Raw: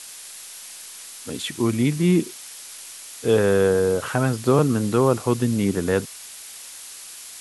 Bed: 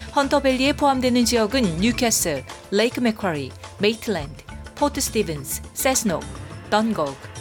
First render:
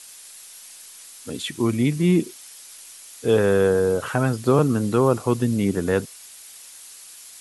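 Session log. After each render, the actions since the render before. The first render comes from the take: denoiser 6 dB, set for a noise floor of -40 dBFS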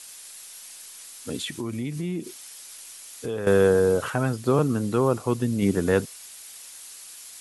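1.44–3.47 compressor 4:1, threshold -28 dBFS; 4.1–5.62 gain -3.5 dB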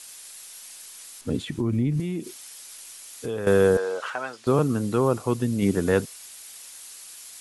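1.21–2 tilt -3 dB/oct; 3.77–4.47 BPF 680–5600 Hz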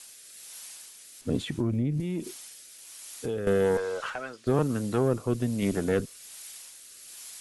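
one diode to ground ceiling -19 dBFS; rotary speaker horn 1.2 Hz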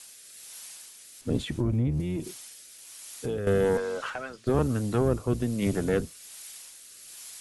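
octaver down 1 oct, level -6 dB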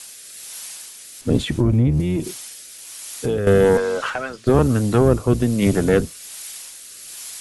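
gain +9.5 dB; limiter -3 dBFS, peak gain reduction 1 dB

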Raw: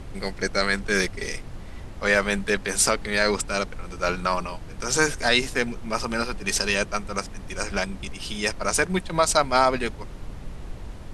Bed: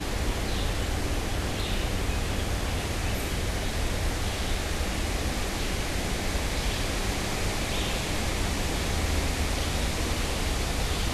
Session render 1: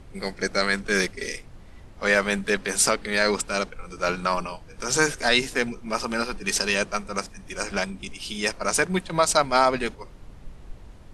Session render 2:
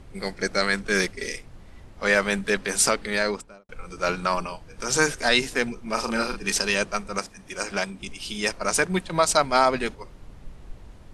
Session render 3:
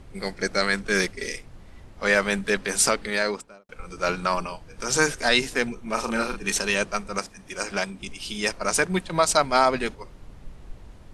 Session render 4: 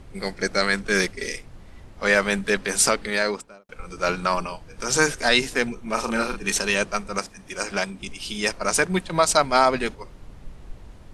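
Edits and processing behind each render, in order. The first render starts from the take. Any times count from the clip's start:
noise print and reduce 8 dB
3.06–3.69 studio fade out; 5.93–6.52 doubler 40 ms -6 dB; 7.19–8.02 low shelf 100 Hz -10.5 dB
3.1–3.8 low shelf 96 Hz -11.5 dB; 5.67–6.83 notch 4900 Hz, Q 7
gain +1.5 dB

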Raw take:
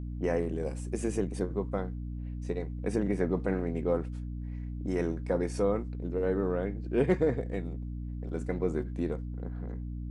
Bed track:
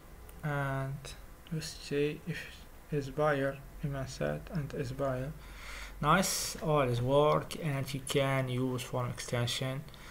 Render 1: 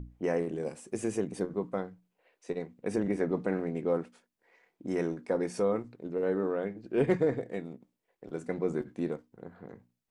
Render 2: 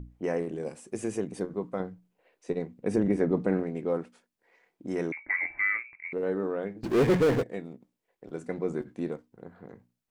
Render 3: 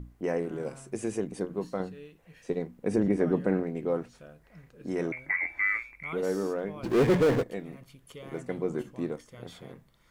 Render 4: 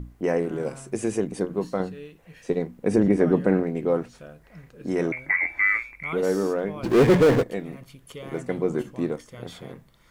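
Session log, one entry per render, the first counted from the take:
notches 60/120/180/240/300 Hz
1.8–3.63 low shelf 490 Hz +6.5 dB; 5.12–6.13 inverted band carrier 2500 Hz; 6.83–7.43 power-law curve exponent 0.5
add bed track -16 dB
gain +6 dB

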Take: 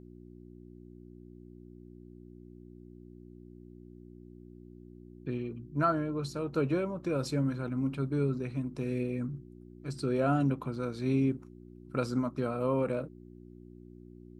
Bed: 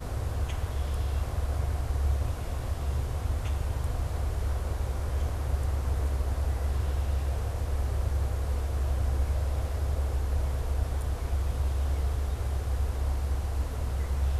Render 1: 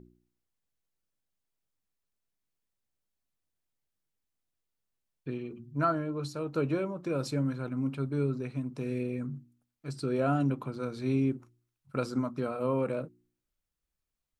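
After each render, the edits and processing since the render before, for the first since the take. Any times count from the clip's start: de-hum 60 Hz, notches 6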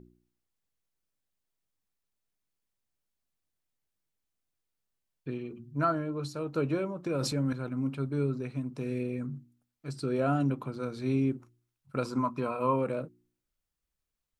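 7.06–7.53 transient shaper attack -1 dB, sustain +8 dB; 12.05–12.76 small resonant body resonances 1000/2500 Hz, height 15 dB, ringing for 35 ms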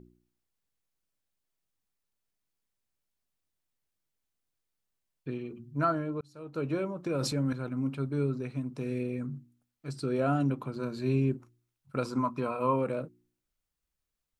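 6.21–6.82 fade in; 10.75–11.36 ripple EQ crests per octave 1.4, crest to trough 8 dB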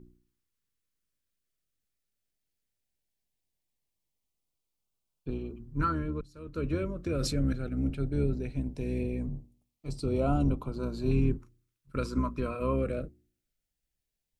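octaver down 2 oct, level -1 dB; LFO notch saw up 0.18 Hz 640–2000 Hz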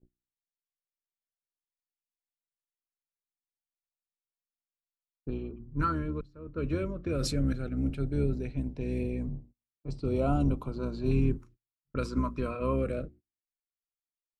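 gate -51 dBFS, range -26 dB; low-pass opened by the level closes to 610 Hz, open at -26.5 dBFS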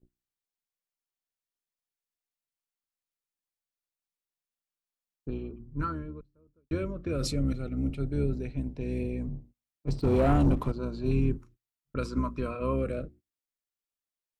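5.43–6.71 studio fade out; 7.22–8.01 Butterworth band-stop 1600 Hz, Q 5; 9.87–10.72 sample leveller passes 2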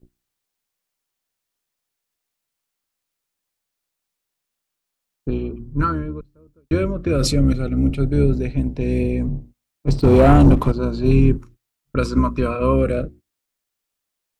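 gain +12 dB

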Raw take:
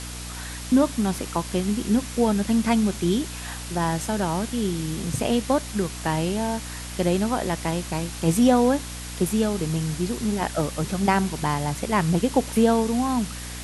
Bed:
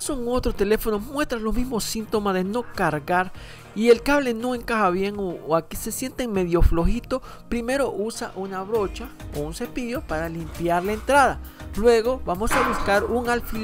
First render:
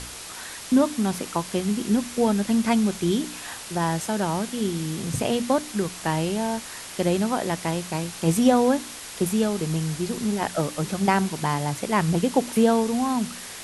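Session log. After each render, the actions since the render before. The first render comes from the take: de-hum 60 Hz, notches 5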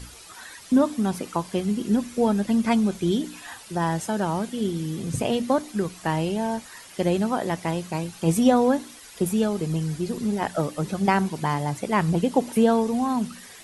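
denoiser 11 dB, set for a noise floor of -38 dBFS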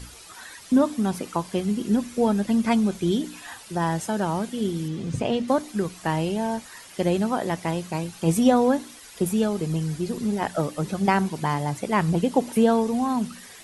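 4.88–5.48 air absorption 77 m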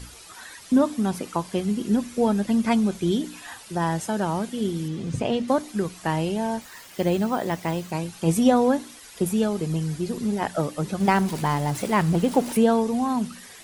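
6.61–7.92 careless resampling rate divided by 2×, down filtered, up hold; 11–12.57 zero-crossing step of -32 dBFS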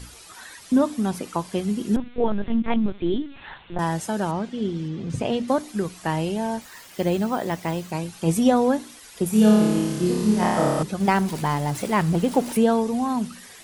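1.96–3.79 LPC vocoder at 8 kHz pitch kept; 4.31–5.1 air absorption 130 m; 9.3–10.83 flutter echo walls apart 4.8 m, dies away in 1.4 s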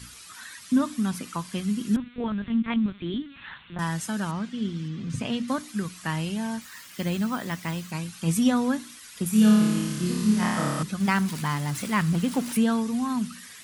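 HPF 120 Hz 6 dB/oct; band shelf 540 Hz -11 dB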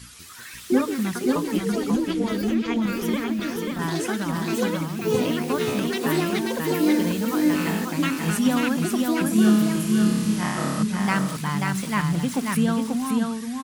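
echoes that change speed 0.193 s, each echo +6 st, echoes 2; echo 0.537 s -3.5 dB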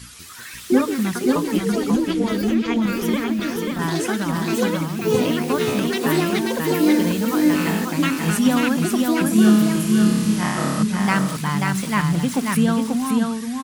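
gain +3.5 dB

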